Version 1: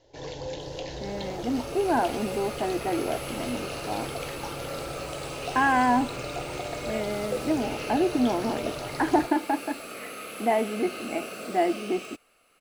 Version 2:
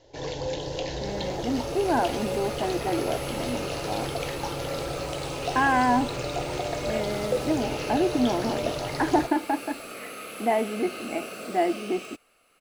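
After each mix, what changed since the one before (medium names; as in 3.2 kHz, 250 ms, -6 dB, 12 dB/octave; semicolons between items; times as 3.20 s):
first sound +4.5 dB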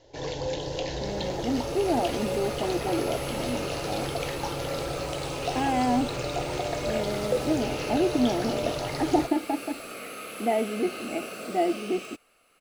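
speech: add Butterworth band-stop 1.3 kHz, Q 0.93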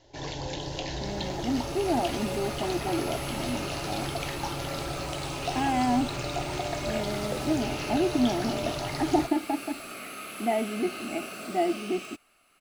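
master: add peaking EQ 490 Hz -14.5 dB 0.25 oct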